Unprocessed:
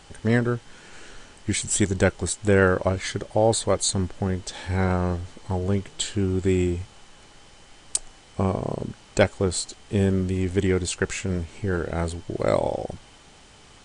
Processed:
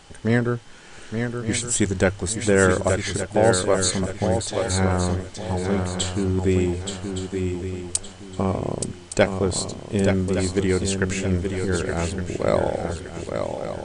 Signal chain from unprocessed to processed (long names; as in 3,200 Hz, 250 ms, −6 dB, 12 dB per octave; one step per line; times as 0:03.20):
mains-hum notches 50/100 Hz
feedback echo with a long and a short gap by turns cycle 1,165 ms, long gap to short 3 to 1, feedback 30%, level −6 dB
level +1 dB